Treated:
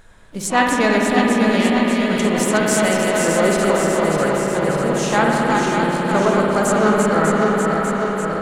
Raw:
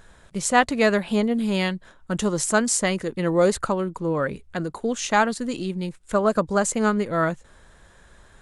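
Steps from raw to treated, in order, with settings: regenerating reverse delay 0.298 s, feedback 80%, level -4 dB; de-hum 58.43 Hz, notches 3; harmoniser +4 st -15 dB, +5 st -18 dB, +7 st -17 dB; spring tank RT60 3.9 s, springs 56 ms, chirp 25 ms, DRR -1 dB

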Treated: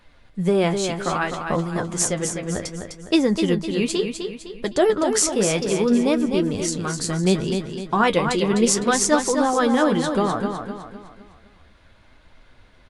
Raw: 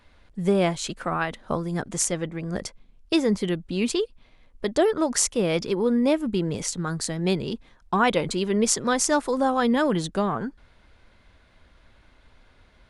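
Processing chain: flange 0.65 Hz, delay 5.4 ms, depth 9.8 ms, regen +48%; feedback echo 0.254 s, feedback 42%, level -6.5 dB; gain +6.5 dB

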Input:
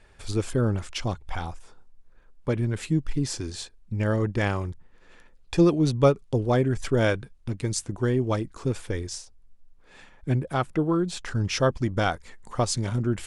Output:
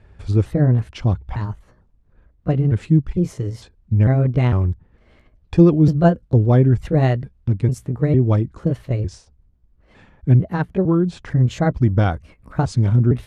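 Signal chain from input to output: trilling pitch shifter +3.5 st, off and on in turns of 0.452 s; HPF 66 Hz 12 dB/oct; RIAA curve playback; gain +1 dB

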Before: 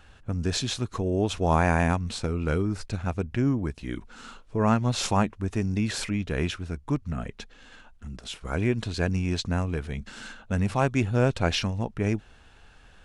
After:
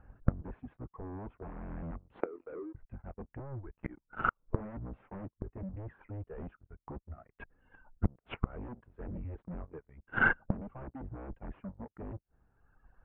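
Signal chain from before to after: octaver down 1 oct, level +1 dB; spectral noise reduction 8 dB; 2.13–2.75 steep high-pass 250 Hz 48 dB/oct; reverb removal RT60 1.3 s; sample leveller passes 3; sine folder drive 8 dB, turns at -8 dBFS; Gaussian blur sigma 6.1 samples; flipped gate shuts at -21 dBFS, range -32 dB; upward expander 1.5:1, over -52 dBFS; gain +8.5 dB

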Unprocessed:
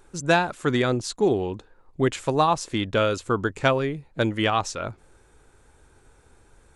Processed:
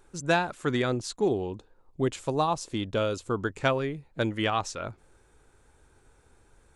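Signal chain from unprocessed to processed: 1.28–3.41 bell 1800 Hz -6 dB 1.2 oct; gain -4.5 dB

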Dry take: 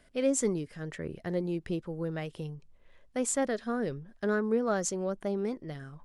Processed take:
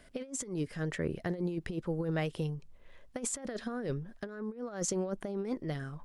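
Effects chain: negative-ratio compressor -34 dBFS, ratio -0.5

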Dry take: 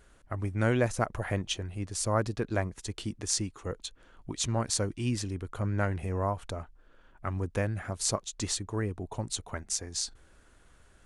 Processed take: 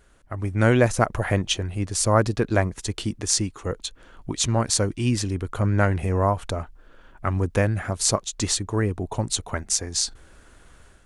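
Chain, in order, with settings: AGC gain up to 7.5 dB; gain +1.5 dB

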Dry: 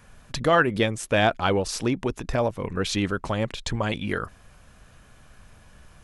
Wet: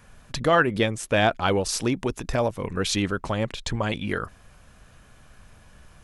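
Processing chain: 1.48–3.02 high shelf 4900 Hz +6 dB

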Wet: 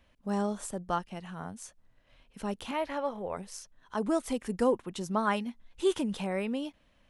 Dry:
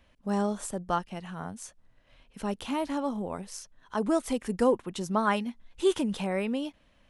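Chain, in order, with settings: 2.71–3.37 graphic EQ 250/500/2000/8000 Hz -10/+6/+7/-10 dB; gain -2.5 dB

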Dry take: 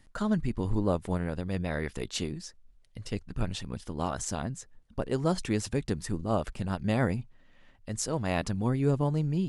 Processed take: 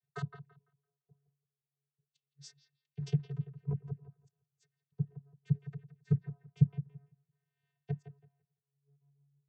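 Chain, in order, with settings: high shelf 6200 Hz -10 dB; flipped gate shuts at -25 dBFS, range -41 dB; vocoder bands 16, square 141 Hz; on a send: analogue delay 0.169 s, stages 4096, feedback 45%, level -9.5 dB; on the sum: three-band expander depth 100%; gain +6 dB

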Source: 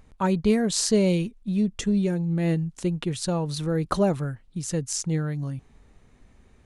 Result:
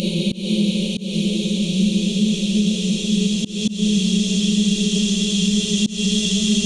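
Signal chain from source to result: Paulstretch 27×, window 1.00 s, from 1.4; resonant high shelf 2500 Hz +9.5 dB, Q 3; auto swell 0.185 s; maximiser +14.5 dB; gain -7.5 dB

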